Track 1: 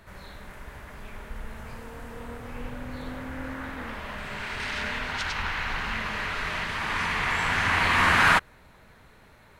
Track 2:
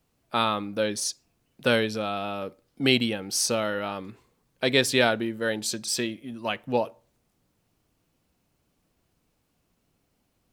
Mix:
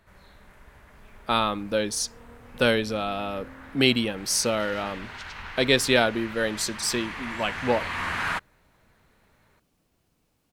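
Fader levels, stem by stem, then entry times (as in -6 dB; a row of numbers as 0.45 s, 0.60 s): -9.0 dB, +1.0 dB; 0.00 s, 0.95 s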